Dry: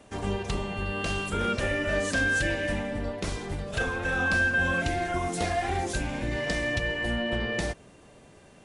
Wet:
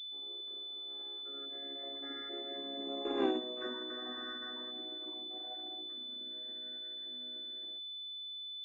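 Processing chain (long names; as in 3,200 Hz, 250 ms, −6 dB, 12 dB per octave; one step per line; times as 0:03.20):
channel vocoder with a chord as carrier major triad, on C4
source passing by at 0:03.24, 19 m/s, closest 1.1 metres
switching amplifier with a slow clock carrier 3,500 Hz
level +7 dB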